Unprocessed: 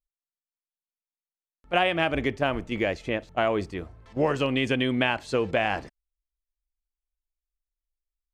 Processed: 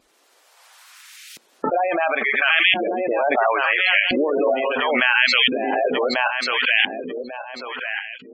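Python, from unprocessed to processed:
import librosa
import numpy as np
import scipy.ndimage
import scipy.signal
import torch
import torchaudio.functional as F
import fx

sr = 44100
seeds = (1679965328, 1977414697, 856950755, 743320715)

p1 = fx.reverse_delay_fb(x, sr, ms=571, feedback_pct=54, wet_db=-2)
p2 = fx.tilt_eq(p1, sr, slope=4.5)
p3 = fx.over_compress(p2, sr, threshold_db=-27.0, ratio=-0.5)
p4 = p2 + F.gain(torch.from_numpy(p3), -1.5).numpy()
p5 = fx.filter_lfo_bandpass(p4, sr, shape='saw_up', hz=0.73, low_hz=260.0, high_hz=2800.0, q=1.3)
p6 = fx.spec_gate(p5, sr, threshold_db=-15, keep='strong')
p7 = fx.pre_swell(p6, sr, db_per_s=20.0)
y = F.gain(torch.from_numpy(p7), 6.5).numpy()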